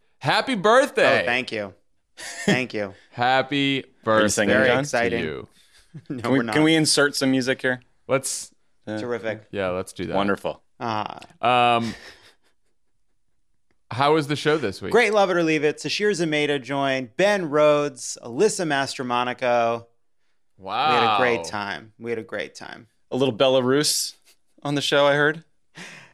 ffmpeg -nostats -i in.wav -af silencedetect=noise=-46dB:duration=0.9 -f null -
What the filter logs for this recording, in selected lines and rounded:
silence_start: 12.31
silence_end: 13.91 | silence_duration: 1.59